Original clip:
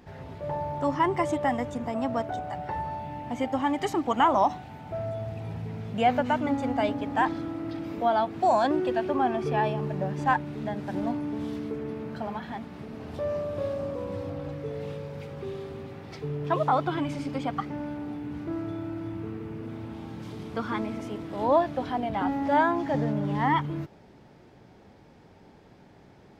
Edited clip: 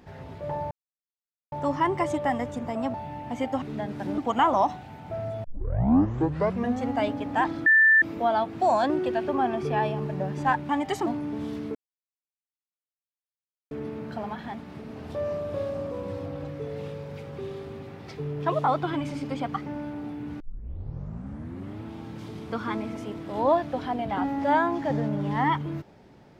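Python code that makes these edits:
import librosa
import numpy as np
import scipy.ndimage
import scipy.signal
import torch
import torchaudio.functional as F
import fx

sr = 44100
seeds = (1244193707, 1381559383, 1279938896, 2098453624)

y = fx.edit(x, sr, fx.insert_silence(at_s=0.71, length_s=0.81),
    fx.cut(start_s=2.13, length_s=0.81),
    fx.swap(start_s=3.62, length_s=0.37, other_s=10.5, other_length_s=0.56),
    fx.tape_start(start_s=5.25, length_s=1.45),
    fx.bleep(start_s=7.47, length_s=0.36, hz=1770.0, db=-14.0),
    fx.insert_silence(at_s=11.75, length_s=1.96),
    fx.tape_start(start_s=18.44, length_s=1.44), tone=tone)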